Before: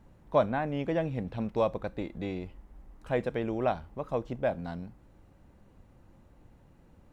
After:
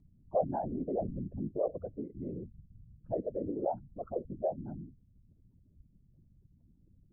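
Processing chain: spectral contrast raised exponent 3.1; whisperiser; gain -4 dB

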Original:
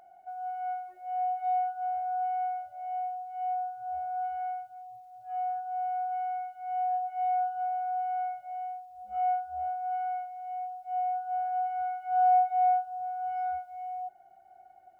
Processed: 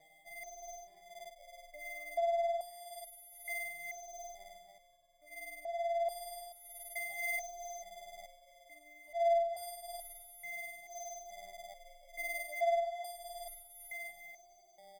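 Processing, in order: frequency quantiser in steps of 2 st; in parallel at -1.5 dB: limiter -26.5 dBFS, peak gain reduction 8 dB; on the sum: Schroeder reverb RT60 0.54 s, combs from 31 ms, DRR 8.5 dB; sample-and-hold 32×; on a send: feedback echo 0.342 s, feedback 53%, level -8 dB; on the sum: stepped resonator 2.3 Hz 160–680 Hz; gain +1 dB

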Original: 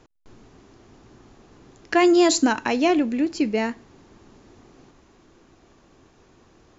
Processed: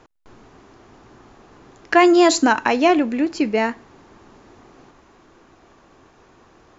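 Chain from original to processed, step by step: bell 1100 Hz +7.5 dB 2.6 oct

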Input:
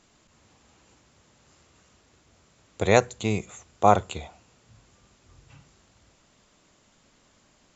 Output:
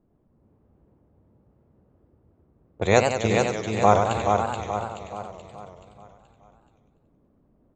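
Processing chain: low-pass opened by the level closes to 430 Hz, open at -23.5 dBFS; vibrato 1.2 Hz 7.1 cents; on a send: feedback echo 0.428 s, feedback 45%, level -4.5 dB; on the sum: warbling echo 94 ms, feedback 62%, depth 197 cents, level -6 dB

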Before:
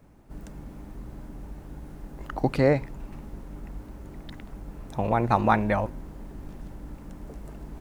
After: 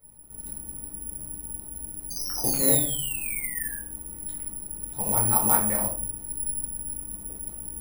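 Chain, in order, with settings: painted sound fall, 2.1–3.75, 1600–6400 Hz -31 dBFS; shoebox room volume 480 m³, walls furnished, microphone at 4.4 m; careless resampling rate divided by 4×, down none, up zero stuff; gain -14 dB

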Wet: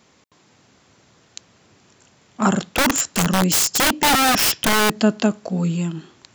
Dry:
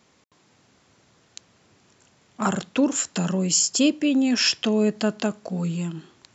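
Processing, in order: dynamic EQ 250 Hz, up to +5 dB, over -31 dBFS, Q 2.1; 2.73–4.93 wrapped overs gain 16 dB; gain +4.5 dB

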